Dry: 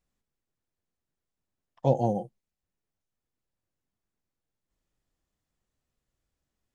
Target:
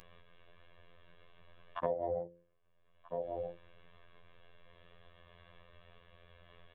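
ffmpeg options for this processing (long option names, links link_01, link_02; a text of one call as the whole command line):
ffmpeg -i in.wav -filter_complex "[0:a]aresample=8000,aresample=44100,aecho=1:1:1.8:0.83,afwtdn=0.00631,acompressor=mode=upward:threshold=-31dB:ratio=2.5,lowshelf=frequency=230:gain=-7.5,bandreject=frequency=60:width_type=h:width=6,bandreject=frequency=120:width_type=h:width=6,bandreject=frequency=180:width_type=h:width=6,bandreject=frequency=240:width_type=h:width=6,bandreject=frequency=300:width_type=h:width=6,bandreject=frequency=360:width_type=h:width=6,bandreject=frequency=420:width_type=h:width=6,bandreject=frequency=480:width_type=h:width=6,bandreject=frequency=540:width_type=h:width=6,asplit=2[link_01][link_02];[link_02]adelay=1283,volume=-16dB,highshelf=frequency=4000:gain=-28.9[link_03];[link_01][link_03]amix=inputs=2:normalize=0,acompressor=threshold=-40dB:ratio=5,afftfilt=real='hypot(re,im)*cos(PI*b)':imag='0':win_size=2048:overlap=0.75,volume=9.5dB" out.wav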